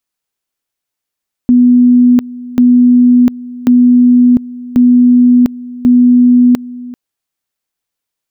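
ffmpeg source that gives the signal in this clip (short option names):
-f lavfi -i "aevalsrc='pow(10,(-3-19.5*gte(mod(t,1.09),0.7))/20)*sin(2*PI*246*t)':d=5.45:s=44100"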